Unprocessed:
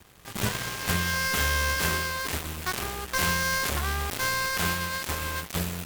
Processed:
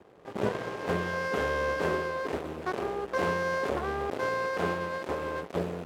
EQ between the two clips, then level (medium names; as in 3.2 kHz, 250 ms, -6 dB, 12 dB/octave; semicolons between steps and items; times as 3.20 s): band-pass filter 460 Hz, Q 1.6; +8.5 dB